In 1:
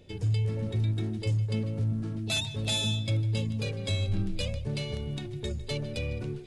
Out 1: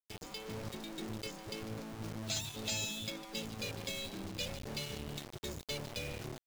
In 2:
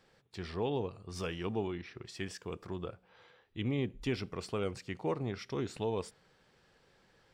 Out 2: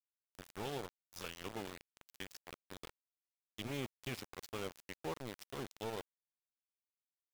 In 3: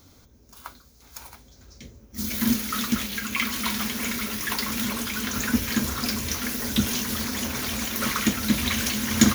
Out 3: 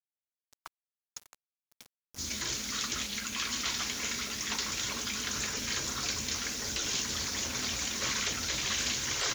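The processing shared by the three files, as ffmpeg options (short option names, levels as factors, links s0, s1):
-af "aresample=16000,aresample=44100,highshelf=f=3500:g=11,aeval=exprs='val(0)*gte(abs(val(0)),0.0237)':c=same,afftfilt=real='re*lt(hypot(re,im),0.224)':imag='im*lt(hypot(re,im),0.224)':win_size=1024:overlap=0.75,volume=0.422"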